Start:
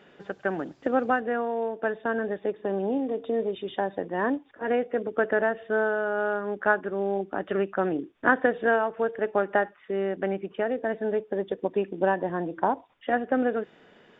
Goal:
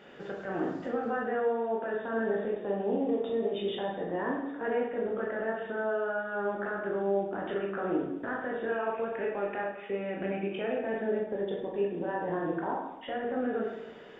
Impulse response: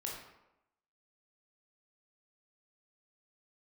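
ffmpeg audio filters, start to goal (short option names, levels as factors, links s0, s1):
-filter_complex "[0:a]asettb=1/sr,asplit=3[s0][s1][s2];[s0]atrim=end=8.684[s3];[s1]atrim=start=8.68:end=10.97,asetpts=PTS-STARTPTS,afade=t=in:d=0.004:c=qsin,afade=t=out:st=2.286:d=0.004:c=qsin,equalizer=f=2500:w=6.9:g=15[s4];[s2]atrim=start=10.966[s5];[s3][s4]acrossfade=d=0.004:c1=hsin:c2=qsin[s6];[s6][s5]acrossfade=d=0.004:c1=qsin:c2=hsin,acompressor=threshold=0.0447:ratio=6,alimiter=level_in=1.5:limit=0.0631:level=0:latency=1:release=16,volume=0.668[s7];[1:a]atrim=start_sample=2205[s8];[s7][s8]afir=irnorm=-1:irlink=0,volume=1.68"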